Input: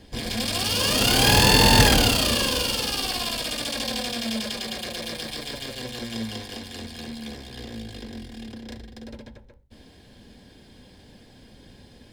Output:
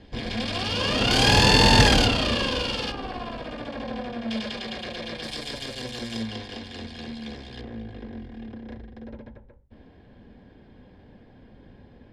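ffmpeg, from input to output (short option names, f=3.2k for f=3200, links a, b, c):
-af "asetnsamples=n=441:p=0,asendcmd='1.11 lowpass f 6100;2.06 lowpass f 3500;2.92 lowpass f 1400;4.3 lowpass f 3400;5.23 lowpass f 8100;6.23 lowpass f 4300;7.61 lowpass f 1700',lowpass=3.5k"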